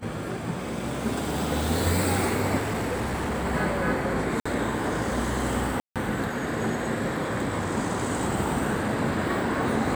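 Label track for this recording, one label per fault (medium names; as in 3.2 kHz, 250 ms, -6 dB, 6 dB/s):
2.570000	3.460000	clipped -24.5 dBFS
4.400000	4.460000	dropout 55 ms
5.800000	5.960000	dropout 157 ms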